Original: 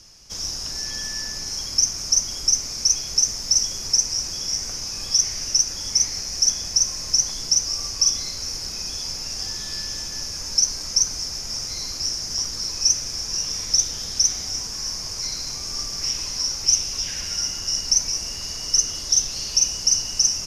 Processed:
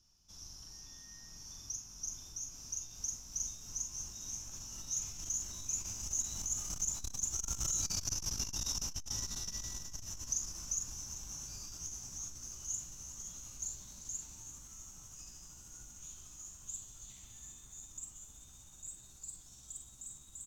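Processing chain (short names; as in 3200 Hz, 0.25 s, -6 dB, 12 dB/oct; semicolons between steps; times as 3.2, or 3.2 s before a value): gliding pitch shift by +5.5 st starting unshifted; Doppler pass-by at 7.9, 15 m/s, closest 2.3 m; graphic EQ 500/2000/8000 Hz -11/-10/-8 dB; compressor 10:1, threshold -47 dBFS, peak gain reduction 20.5 dB; tapped delay 41/43/393 ms -15.5/-6.5/-14.5 dB; core saturation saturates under 280 Hz; gain +16.5 dB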